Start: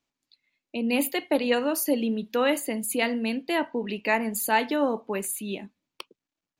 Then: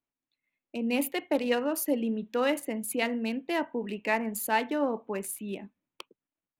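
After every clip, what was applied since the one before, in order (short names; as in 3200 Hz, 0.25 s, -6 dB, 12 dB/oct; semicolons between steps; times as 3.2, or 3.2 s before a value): Wiener smoothing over 9 samples; AGC gain up to 5.5 dB; gain -8.5 dB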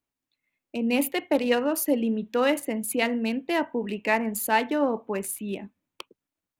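bell 77 Hz +6.5 dB 0.77 oct; gain +4 dB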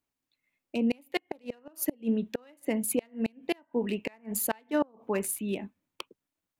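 flipped gate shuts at -16 dBFS, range -33 dB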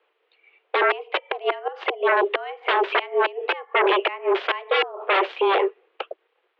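sine folder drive 18 dB, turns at -14.5 dBFS; mistuned SSB +190 Hz 170–3100 Hz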